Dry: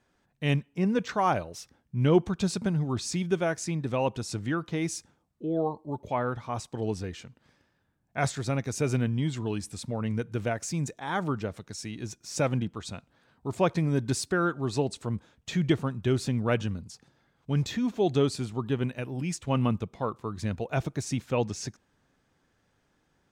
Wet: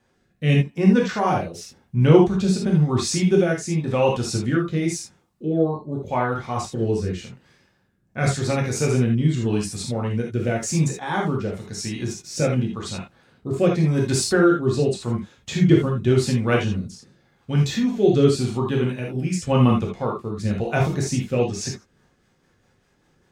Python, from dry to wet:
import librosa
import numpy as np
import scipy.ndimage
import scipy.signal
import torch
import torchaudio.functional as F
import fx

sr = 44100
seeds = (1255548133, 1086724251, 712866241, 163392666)

y = fx.rotary_switch(x, sr, hz=0.9, then_hz=5.0, switch_at_s=21.34)
y = fx.rev_gated(y, sr, seeds[0], gate_ms=100, shape='flat', drr_db=-2.0)
y = y * librosa.db_to_amplitude(5.5)